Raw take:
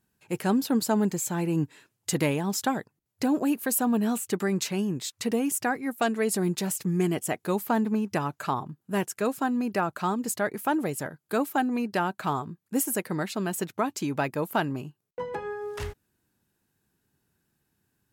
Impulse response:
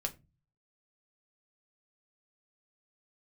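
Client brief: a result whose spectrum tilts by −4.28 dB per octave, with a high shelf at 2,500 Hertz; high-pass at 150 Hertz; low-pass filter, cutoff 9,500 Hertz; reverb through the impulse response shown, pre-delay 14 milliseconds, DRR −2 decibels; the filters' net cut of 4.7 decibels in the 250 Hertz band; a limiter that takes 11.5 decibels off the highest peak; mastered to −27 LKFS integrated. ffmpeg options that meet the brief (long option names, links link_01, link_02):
-filter_complex "[0:a]highpass=150,lowpass=9500,equalizer=frequency=250:width_type=o:gain=-5,highshelf=frequency=2500:gain=7.5,alimiter=limit=-20dB:level=0:latency=1,asplit=2[link_01][link_02];[1:a]atrim=start_sample=2205,adelay=14[link_03];[link_02][link_03]afir=irnorm=-1:irlink=0,volume=1dB[link_04];[link_01][link_04]amix=inputs=2:normalize=0,volume=1dB"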